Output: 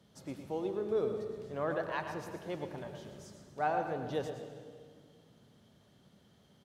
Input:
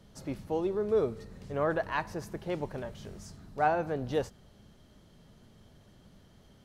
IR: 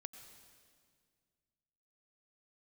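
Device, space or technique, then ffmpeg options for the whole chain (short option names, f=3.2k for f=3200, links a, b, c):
PA in a hall: -filter_complex "[0:a]highpass=110,equalizer=f=3.5k:t=o:w=0.27:g=4,aecho=1:1:114:0.316[a];[1:a]atrim=start_sample=2205[b];[a][b]afir=irnorm=-1:irlink=0"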